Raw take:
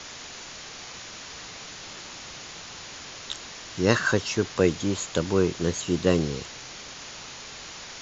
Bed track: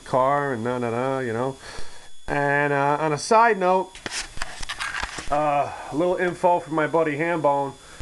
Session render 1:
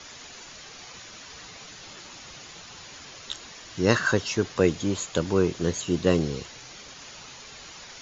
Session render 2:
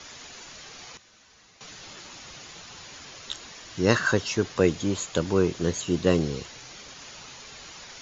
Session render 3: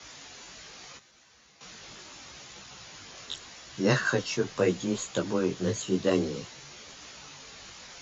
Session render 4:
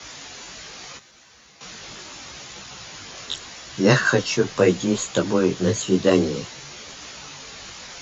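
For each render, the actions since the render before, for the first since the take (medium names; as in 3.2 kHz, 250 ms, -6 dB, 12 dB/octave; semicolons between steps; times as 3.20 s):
noise reduction 7 dB, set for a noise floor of -42 dBFS
0.97–1.61 s: feedback comb 72 Hz, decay 1.7 s, harmonics odd, mix 80%
frequency shift +17 Hz; chorus voices 2, 0.78 Hz, delay 18 ms, depth 4.2 ms
trim +8 dB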